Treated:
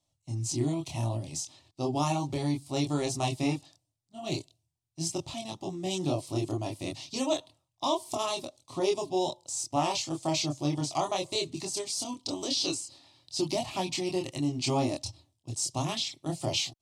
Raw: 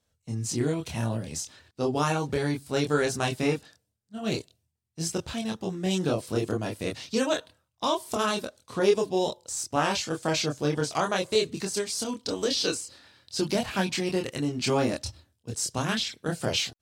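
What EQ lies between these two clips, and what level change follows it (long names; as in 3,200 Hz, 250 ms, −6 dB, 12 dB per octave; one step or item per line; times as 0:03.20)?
low-pass filter 10,000 Hz 12 dB per octave
phaser with its sweep stopped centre 310 Hz, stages 8
0.0 dB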